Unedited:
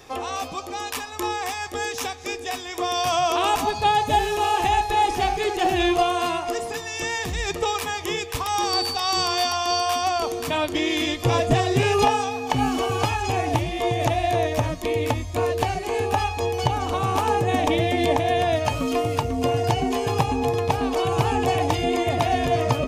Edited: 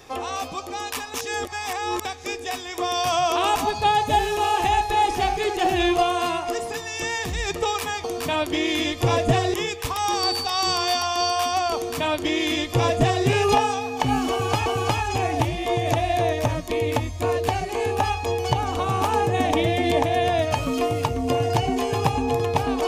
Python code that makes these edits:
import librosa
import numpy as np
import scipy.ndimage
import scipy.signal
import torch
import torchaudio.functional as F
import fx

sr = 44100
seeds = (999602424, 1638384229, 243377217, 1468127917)

y = fx.edit(x, sr, fx.reverse_span(start_s=1.14, length_s=0.91),
    fx.duplicate(start_s=10.26, length_s=1.5, to_s=8.04),
    fx.repeat(start_s=12.8, length_s=0.36, count=2), tone=tone)